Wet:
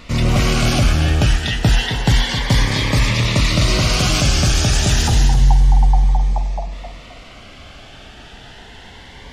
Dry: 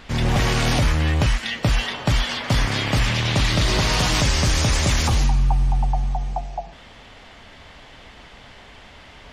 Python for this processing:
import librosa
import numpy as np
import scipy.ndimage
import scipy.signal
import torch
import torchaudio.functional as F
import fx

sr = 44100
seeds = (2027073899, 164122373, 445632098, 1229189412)

p1 = fx.rider(x, sr, range_db=3, speed_s=0.5)
p2 = x + (p1 * librosa.db_to_amplitude(1.0))
p3 = fx.echo_feedback(p2, sr, ms=262, feedback_pct=34, wet_db=-9.0)
p4 = fx.notch_cascade(p3, sr, direction='rising', hz=0.29)
y = p4 * librosa.db_to_amplitude(-2.0)